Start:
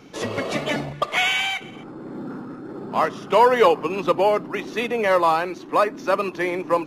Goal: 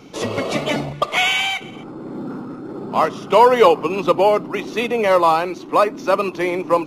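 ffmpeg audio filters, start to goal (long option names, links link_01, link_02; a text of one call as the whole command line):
ffmpeg -i in.wav -af "equalizer=frequency=1700:width_type=o:width=0.31:gain=-8,volume=4dB" out.wav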